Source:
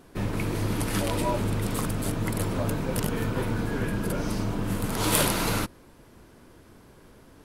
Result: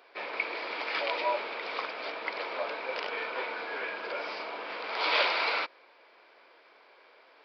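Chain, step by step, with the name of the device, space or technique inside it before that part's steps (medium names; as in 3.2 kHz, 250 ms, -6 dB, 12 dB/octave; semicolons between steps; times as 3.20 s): musical greeting card (resampled via 11.025 kHz; high-pass 520 Hz 24 dB/octave; peaking EQ 2.3 kHz +10 dB 0.23 oct)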